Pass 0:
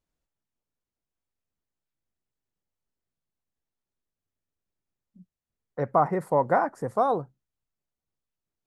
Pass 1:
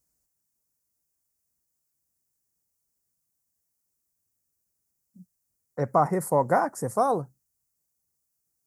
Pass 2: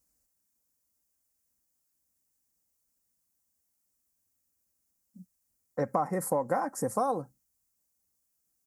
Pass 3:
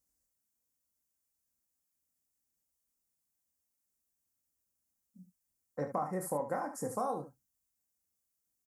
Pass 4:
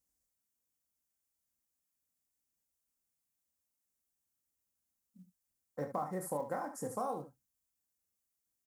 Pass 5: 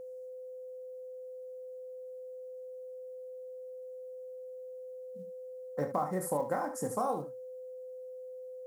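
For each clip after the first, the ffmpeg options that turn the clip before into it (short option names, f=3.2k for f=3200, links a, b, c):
-af "aexciter=amount=12.4:drive=9:freq=5.3k,highpass=46,bass=f=250:g=3,treble=f=4k:g=-12"
-af "aecho=1:1:3.8:0.45,acompressor=threshold=-25dB:ratio=6"
-af "aecho=1:1:27|73:0.422|0.316,volume=-7dB"
-af "acrusher=bits=8:mode=log:mix=0:aa=0.000001,volume=-2.5dB"
-af "aeval=exprs='val(0)+0.00447*sin(2*PI*510*n/s)':c=same,volume=5dB"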